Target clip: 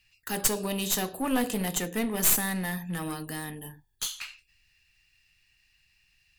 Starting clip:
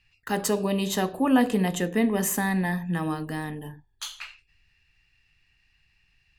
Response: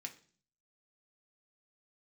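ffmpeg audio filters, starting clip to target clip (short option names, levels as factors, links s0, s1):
-af "crystalizer=i=4:c=0,aeval=exprs='clip(val(0),-1,0.0708)':c=same,volume=0.531"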